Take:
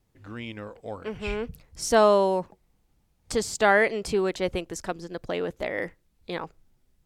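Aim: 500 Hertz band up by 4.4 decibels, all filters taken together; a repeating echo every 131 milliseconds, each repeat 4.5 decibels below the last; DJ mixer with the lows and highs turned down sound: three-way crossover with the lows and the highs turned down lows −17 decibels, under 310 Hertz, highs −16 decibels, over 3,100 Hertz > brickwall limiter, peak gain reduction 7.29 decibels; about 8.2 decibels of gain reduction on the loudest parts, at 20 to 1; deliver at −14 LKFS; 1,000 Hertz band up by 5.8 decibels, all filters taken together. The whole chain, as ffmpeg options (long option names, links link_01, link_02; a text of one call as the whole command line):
ffmpeg -i in.wav -filter_complex "[0:a]equalizer=frequency=500:width_type=o:gain=5,equalizer=frequency=1000:width_type=o:gain=6,acompressor=threshold=-16dB:ratio=20,acrossover=split=310 3100:gain=0.141 1 0.158[link_01][link_02][link_03];[link_01][link_02][link_03]amix=inputs=3:normalize=0,aecho=1:1:131|262|393|524|655|786|917|1048|1179:0.596|0.357|0.214|0.129|0.0772|0.0463|0.0278|0.0167|0.01,volume=14.5dB,alimiter=limit=-2dB:level=0:latency=1" out.wav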